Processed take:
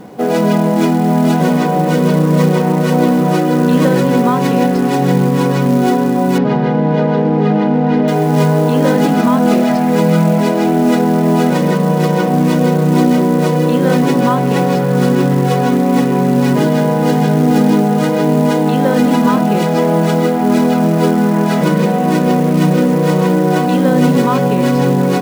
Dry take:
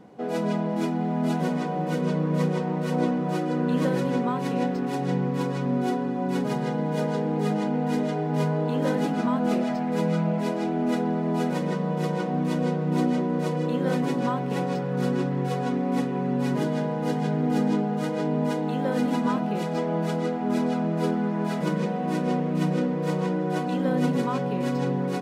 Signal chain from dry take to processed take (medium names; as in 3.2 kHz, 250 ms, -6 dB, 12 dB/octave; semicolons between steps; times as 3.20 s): in parallel at +2.5 dB: peak limiter -21.5 dBFS, peak gain reduction 9 dB; on the sum: companded quantiser 6-bit; 6.38–8.08 s: distance through air 260 m; trim +8 dB